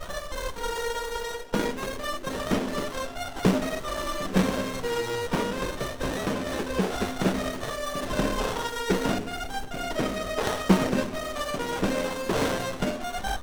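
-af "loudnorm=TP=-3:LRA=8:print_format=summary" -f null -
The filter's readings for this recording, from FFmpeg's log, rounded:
Input Integrated:    -28.4 LUFS
Input True Peak:      -6.3 dBTP
Input LRA:             2.0 LU
Input Threshold:     -38.4 LUFS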